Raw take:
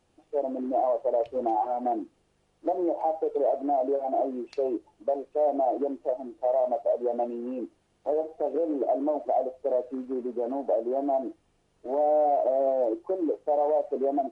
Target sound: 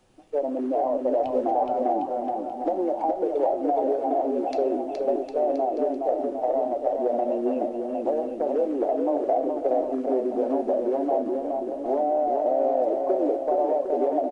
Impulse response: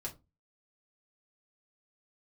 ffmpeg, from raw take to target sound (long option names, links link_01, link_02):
-filter_complex "[0:a]asplit=2[link_01][link_02];[1:a]atrim=start_sample=2205[link_03];[link_02][link_03]afir=irnorm=-1:irlink=0,volume=-7dB[link_04];[link_01][link_04]amix=inputs=2:normalize=0,acrossover=split=320|1100[link_05][link_06][link_07];[link_05]acompressor=threshold=-38dB:ratio=4[link_08];[link_06]acompressor=threshold=-30dB:ratio=4[link_09];[link_07]acompressor=threshold=-45dB:ratio=4[link_10];[link_08][link_09][link_10]amix=inputs=3:normalize=0,aecho=1:1:420|756|1025|1240|1412:0.631|0.398|0.251|0.158|0.1,volume=4.5dB"